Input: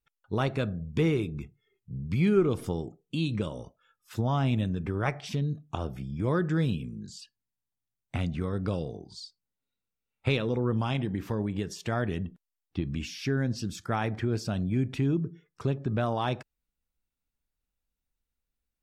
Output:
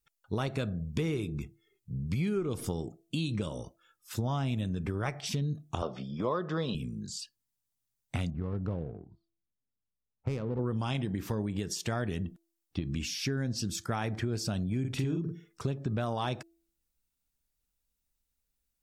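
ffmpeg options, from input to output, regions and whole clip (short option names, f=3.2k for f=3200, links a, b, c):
-filter_complex "[0:a]asettb=1/sr,asplit=3[a][b][c];[a]atrim=end=5.824[d];[b]atrim=start=5.82:end=6.75,asetpts=PTS-STARTPTS,afade=t=in:d=0.004:c=qsin,afade=t=out:st=0.926:d=0.004:c=qsin,highpass=280,equalizer=f=310:t=q:w=4:g=-7,equalizer=f=580:t=q:w=4:g=5,equalizer=f=1.1k:t=q:w=4:g=9,equalizer=f=1.6k:t=q:w=4:g=-7,equalizer=f=2.3k:t=q:w=4:g=-9,lowpass=f=4.6k:w=0.5412,lowpass=f=4.6k:w=1.3066,acontrast=67[e];[c]atrim=start=6.746[f];[d][e]acrossfade=d=0.004:c1=hsin:c2=qsin[g];[g][f]acrossfade=d=0.004:c1=qsin:c2=hsin,asettb=1/sr,asplit=3[h][i][j];[h]atrim=end=8.304[k];[i]atrim=start=8.3:end=10.59,asetpts=PTS-STARTPTS,afade=t=in:d=0.004:c=qsin,afade=t=out:st=2.286:d=0.004:c=qsin,lowpass=1.2k,equalizer=f=420:w=0.35:g=-5,adynamicsmooth=sensitivity=7.5:basefreq=880[l];[j]atrim=start=10.586[m];[k][l]acrossfade=d=0.004:c1=hsin:c2=qsin[n];[n][m]acrossfade=d=0.004:c1=qsin:c2=hsin,asettb=1/sr,asplit=3[o][p][q];[o]atrim=end=14.804[r];[p]atrim=start=14.8:end=15.64,asetpts=PTS-STARTPTS,afade=t=in:d=0.004:c=qsin,afade=t=out:st=0.836:d=0.004:c=qsin,asplit=2[s][t];[t]adelay=46,volume=-3.5dB[u];[s][u]amix=inputs=2:normalize=0,atrim=end_sample=37044,bandreject=f=222.5:t=h:w=4,bandreject=f=445:t=h:w=4,bandreject=f=667.5:t=h:w=4[v];[q]atrim=start=15.636[w];[r][v]acrossfade=d=0.004:c1=hsin:c2=qsin[x];[x][w]acrossfade=d=0.004:c1=qsin:c2=hsin,bass=f=250:g=1,treble=f=4k:g=8,bandreject=f=333.8:t=h:w=4,bandreject=f=667.6:t=h:w=4,acompressor=threshold=-28dB:ratio=6"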